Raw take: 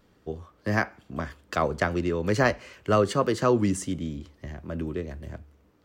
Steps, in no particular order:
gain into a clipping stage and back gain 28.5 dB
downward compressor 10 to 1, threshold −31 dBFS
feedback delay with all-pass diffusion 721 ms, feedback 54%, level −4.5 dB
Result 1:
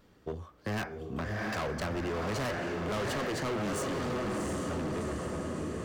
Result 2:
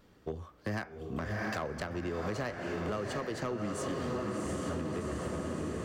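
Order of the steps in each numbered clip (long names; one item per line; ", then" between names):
feedback delay with all-pass diffusion, then gain into a clipping stage and back, then downward compressor
feedback delay with all-pass diffusion, then downward compressor, then gain into a clipping stage and back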